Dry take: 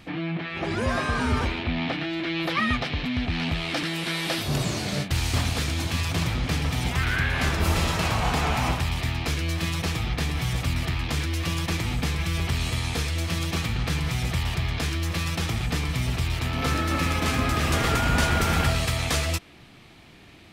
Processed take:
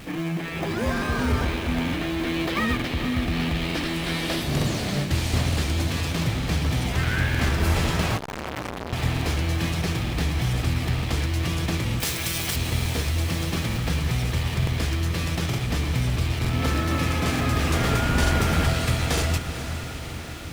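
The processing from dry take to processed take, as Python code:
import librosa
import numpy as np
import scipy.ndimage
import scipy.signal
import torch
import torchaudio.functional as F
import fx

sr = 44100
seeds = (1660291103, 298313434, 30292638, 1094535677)

p1 = x + 0.5 * 10.0 ** (-38.0 / 20.0) * np.sign(x)
p2 = fx.hum_notches(p1, sr, base_hz=50, count=3)
p3 = fx.sample_hold(p2, sr, seeds[0], rate_hz=1400.0, jitter_pct=0)
p4 = p2 + (p3 * 10.0 ** (-5.5 / 20.0))
p5 = fx.riaa(p4, sr, side='recording', at=(12.0, 12.56))
p6 = fx.echo_diffused(p5, sr, ms=463, feedback_pct=67, wet_db=-10)
p7 = fx.buffer_crackle(p6, sr, first_s=0.93, period_s=0.91, block=2048, kind='repeat')
p8 = fx.transformer_sat(p7, sr, knee_hz=2000.0, at=(8.17, 8.93))
y = p8 * 10.0 ** (-2.5 / 20.0)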